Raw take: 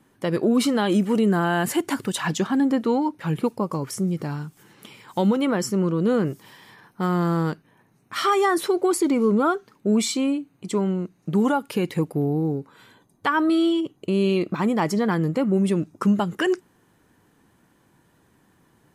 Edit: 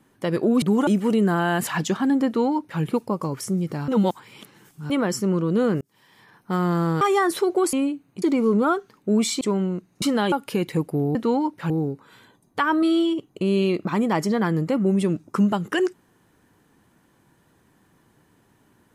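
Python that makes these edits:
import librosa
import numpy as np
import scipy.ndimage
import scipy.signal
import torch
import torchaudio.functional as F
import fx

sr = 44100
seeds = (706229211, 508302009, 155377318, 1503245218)

y = fx.edit(x, sr, fx.swap(start_s=0.62, length_s=0.3, other_s=11.29, other_length_s=0.25),
    fx.cut(start_s=1.72, length_s=0.45),
    fx.duplicate(start_s=2.76, length_s=0.55, to_s=12.37),
    fx.reverse_span(start_s=4.38, length_s=1.02),
    fx.fade_in_span(start_s=6.31, length_s=0.7),
    fx.cut(start_s=7.51, length_s=0.77),
    fx.move(start_s=10.19, length_s=0.49, to_s=9.0), tone=tone)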